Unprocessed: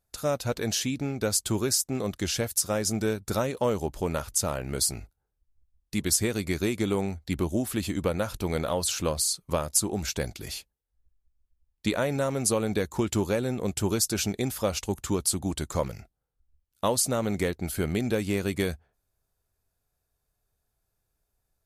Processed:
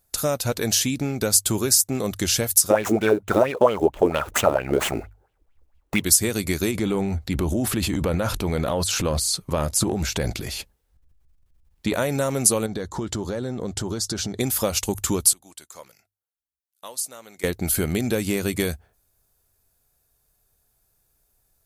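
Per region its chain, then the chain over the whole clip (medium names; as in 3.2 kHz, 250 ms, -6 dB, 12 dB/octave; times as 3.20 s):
2.70–6.04 s: median filter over 9 samples + peaking EQ 710 Hz +6.5 dB 2.5 oct + sweeping bell 4.4 Hz 300–3100 Hz +16 dB
6.71–11.94 s: transient shaper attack -2 dB, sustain +10 dB + low-pass 2.7 kHz 6 dB/octave
12.66–14.40 s: low-pass 4.9 kHz + compression, threshold -31 dBFS + peaking EQ 2.5 kHz -12 dB 0.4 oct
15.33–17.44 s: low-pass 1.1 kHz 6 dB/octave + differentiator
whole clip: compression 2:1, threshold -30 dBFS; treble shelf 7 kHz +10 dB; hum notches 50/100 Hz; trim +7.5 dB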